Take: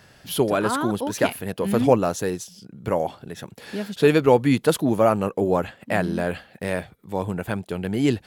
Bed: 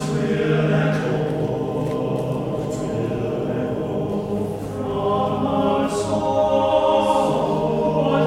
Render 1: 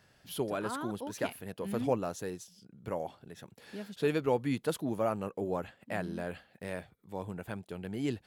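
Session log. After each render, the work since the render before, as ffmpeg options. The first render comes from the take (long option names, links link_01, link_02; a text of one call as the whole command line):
ffmpeg -i in.wav -af "volume=-13dB" out.wav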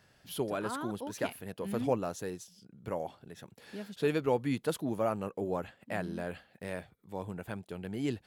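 ffmpeg -i in.wav -af anull out.wav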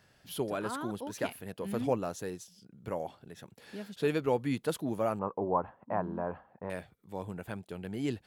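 ffmpeg -i in.wav -filter_complex "[0:a]asettb=1/sr,asplit=3[link_01][link_02][link_03];[link_01]atrim=end=5.194[link_04];[link_02]atrim=start=5.19:end=6.7,asetpts=PTS-STARTPTS,afade=type=in:duration=0.004:curve=qsin,afade=type=out:start_time=1.506:duration=0.004:curve=qsin,lowpass=frequency=1000:width_type=q:width=4.5[link_05];[link_03]atrim=start=6.696[link_06];[link_04][link_05]acrossfade=duration=0.004:curve1=hsin:curve2=qsin[link_07];[link_07][link_06]acrossfade=duration=0.004:curve1=qsin:curve2=hsin" out.wav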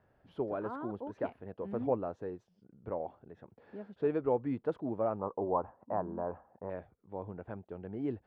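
ffmpeg -i in.wav -af "lowpass=1000,equalizer=frequency=160:width_type=o:width=1.1:gain=-6.5" out.wav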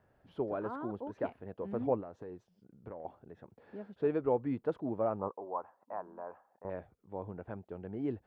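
ffmpeg -i in.wav -filter_complex "[0:a]asettb=1/sr,asplit=3[link_01][link_02][link_03];[link_01]atrim=end=2.004[link_04];[link_02]atrim=start=2:end=3.05,asetpts=PTS-STARTPTS,afade=type=in:duration=0.004:curve=qsin,afade=type=out:start_time=1.046:duration=0.004:curve=qsin,acompressor=threshold=-40dB:ratio=10:attack=3.2:release=140:knee=1:detection=peak[link_05];[link_03]atrim=start=3.046[link_06];[link_04][link_05]acrossfade=duration=0.004:curve1=hsin:curve2=qsin[link_07];[link_07][link_06]acrossfade=duration=0.004:curve1=qsin:curve2=hsin,asettb=1/sr,asplit=3[link_08][link_09][link_10];[link_08]atrim=end=5.314[link_11];[link_09]atrim=start=5.31:end=6.65,asetpts=PTS-STARTPTS,afade=type=in:duration=0.004:curve=qsin,afade=type=out:start_time=1.336:duration=0.004:curve=qsin,highpass=frequency=1300:poles=1[link_12];[link_10]atrim=start=6.646[link_13];[link_11][link_12]acrossfade=duration=0.004:curve1=hsin:curve2=qsin[link_14];[link_14][link_13]acrossfade=duration=0.004:curve1=qsin:curve2=hsin" out.wav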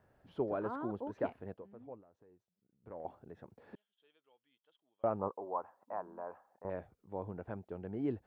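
ffmpeg -i in.wav -filter_complex "[0:a]asettb=1/sr,asplit=3[link_01][link_02][link_03];[link_01]atrim=end=3.754[link_04];[link_02]atrim=start=3.75:end=5.04,asetpts=PTS-STARTPTS,afade=type=in:duration=0.004:curve=qsin,afade=type=out:start_time=1.286:duration=0.004:curve=qsin,bandpass=frequency=3200:width_type=q:width=19[link_05];[link_03]atrim=start=5.036[link_06];[link_04][link_05]acrossfade=duration=0.004:curve1=hsin:curve2=qsin[link_07];[link_07][link_06]acrossfade=duration=0.004:curve1=qsin:curve2=hsin,asplit=3[link_08][link_09][link_10];[link_08]atrim=end=1.69,asetpts=PTS-STARTPTS,afade=type=out:start_time=1.52:duration=0.17:curve=qua:silence=0.11885[link_11];[link_09]atrim=start=1.69:end=2.78,asetpts=PTS-STARTPTS,volume=-18.5dB[link_12];[link_10]atrim=start=2.78,asetpts=PTS-STARTPTS,afade=type=in:duration=0.17:curve=qua:silence=0.11885[link_13];[link_11][link_12][link_13]concat=n=3:v=0:a=1" out.wav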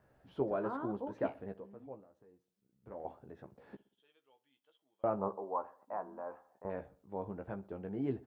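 ffmpeg -i in.wav -filter_complex "[0:a]asplit=2[link_01][link_02];[link_02]adelay=15,volume=-6.5dB[link_03];[link_01][link_03]amix=inputs=2:normalize=0,asplit=2[link_04][link_05];[link_05]adelay=61,lowpass=frequency=2200:poles=1,volume=-19dB,asplit=2[link_06][link_07];[link_07]adelay=61,lowpass=frequency=2200:poles=1,volume=0.49,asplit=2[link_08][link_09];[link_09]adelay=61,lowpass=frequency=2200:poles=1,volume=0.49,asplit=2[link_10][link_11];[link_11]adelay=61,lowpass=frequency=2200:poles=1,volume=0.49[link_12];[link_04][link_06][link_08][link_10][link_12]amix=inputs=5:normalize=0" out.wav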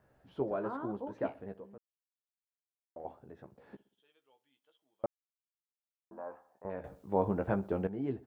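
ffmpeg -i in.wav -filter_complex "[0:a]asplit=7[link_01][link_02][link_03][link_04][link_05][link_06][link_07];[link_01]atrim=end=1.78,asetpts=PTS-STARTPTS,afade=type=out:start_time=1.776:duration=0.004:curve=hsin[link_08];[link_02]atrim=start=1.78:end=2.96,asetpts=PTS-STARTPTS,volume=0[link_09];[link_03]atrim=start=2.96:end=5.06,asetpts=PTS-STARTPTS,afade=type=in:duration=0.004:curve=hsin,afade=type=out:start_time=2.096:duration=0.004:curve=hsin[link_10];[link_04]atrim=start=5.06:end=6.11,asetpts=PTS-STARTPTS,volume=0[link_11];[link_05]atrim=start=6.11:end=6.842,asetpts=PTS-STARTPTS,afade=type=in:duration=0.004:curve=hsin[link_12];[link_06]atrim=start=6.838:end=7.872,asetpts=PTS-STARTPTS,volume=11dB[link_13];[link_07]atrim=start=7.868[link_14];[link_08][link_09][link_10][link_11][link_12]concat=n=5:v=0:a=1[link_15];[link_15][link_13]acrossfade=duration=0.004:curve1=hsin:curve2=hsin[link_16];[link_16][link_14]acrossfade=duration=0.004:curve1=hsin:curve2=hsin" out.wav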